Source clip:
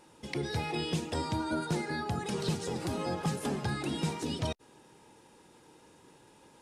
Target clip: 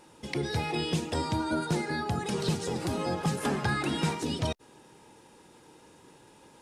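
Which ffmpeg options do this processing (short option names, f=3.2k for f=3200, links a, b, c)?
-filter_complex "[0:a]asettb=1/sr,asplit=3[a][b][c];[a]atrim=end=3.384[d];[b]atrim=start=3.38:end=4.15,asetpts=PTS-STARTPTS,afade=t=in:d=0.004:c=qsin,afade=t=out:st=0.766:d=0.004:c=qsin,equalizer=f=1.5k:t=o:w=1.5:g=6.5[e];[c]atrim=start=4.146[f];[d][e]acrossfade=d=0.004:c1=hsin:c2=qsin[g];[g][f]acrossfade=d=0.004:c1=qsin:c2=hsin,volume=3dB"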